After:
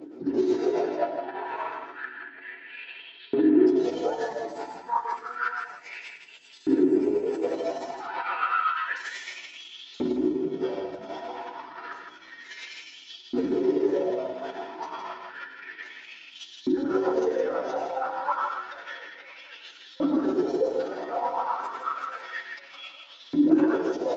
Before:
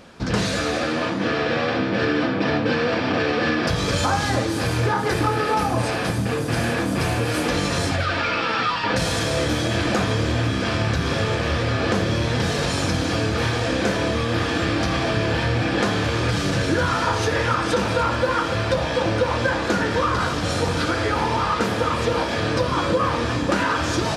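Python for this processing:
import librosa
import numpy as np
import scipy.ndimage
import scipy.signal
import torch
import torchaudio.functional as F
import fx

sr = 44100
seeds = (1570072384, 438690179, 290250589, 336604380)

y = fx.spec_expand(x, sr, power=1.6)
y = fx.band_shelf(y, sr, hz=2100.0, db=-8.5, octaves=3.0)
y = fx.hum_notches(y, sr, base_hz=50, count=4)
y = fx.tremolo_shape(y, sr, shape='triangle', hz=8.1, depth_pct=70)
y = fx.dynamic_eq(y, sr, hz=1100.0, q=0.72, threshold_db=-39.0, ratio=4.0, max_db=-4)
y = fx.pitch_keep_formants(y, sr, semitones=-10.0)
y = y + 10.0 ** (-20.5 / 20.0) * np.pad(y, (int(1099 * sr / 1000.0), 0))[:len(y)]
y = fx.over_compress(y, sr, threshold_db=-28.0, ratio=-1.0)
y = fx.filter_lfo_highpass(y, sr, shape='saw_up', hz=0.3, low_hz=280.0, high_hz=3900.0, q=5.1)
y = fx.echo_multitap(y, sr, ms=(95, 162), db=(-12.0, -6.0))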